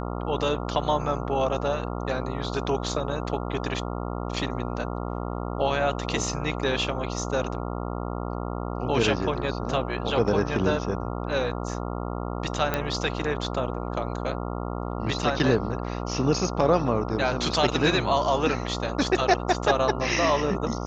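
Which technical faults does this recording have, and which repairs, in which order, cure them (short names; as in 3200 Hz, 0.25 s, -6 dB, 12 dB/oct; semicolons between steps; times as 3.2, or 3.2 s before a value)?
buzz 60 Hz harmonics 23 -31 dBFS
12.74 pop -10 dBFS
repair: de-click; de-hum 60 Hz, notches 23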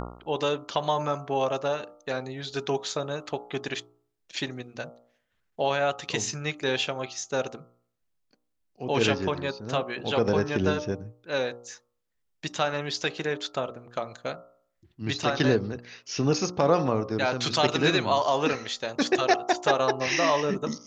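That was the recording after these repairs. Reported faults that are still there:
none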